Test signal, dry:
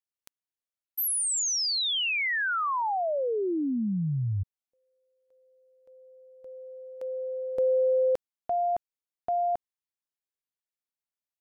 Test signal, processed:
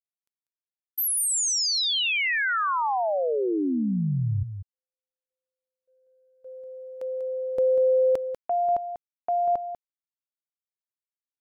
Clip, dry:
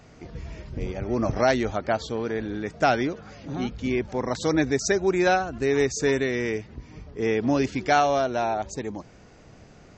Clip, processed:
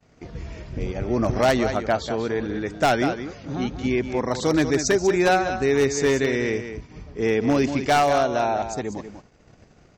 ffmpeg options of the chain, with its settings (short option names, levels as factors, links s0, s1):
-af "aecho=1:1:193:0.335,agate=range=0.0224:threshold=0.00562:ratio=3:release=60:detection=peak,aeval=exprs='0.2*(abs(mod(val(0)/0.2+3,4)-2)-1)':c=same,volume=1.33"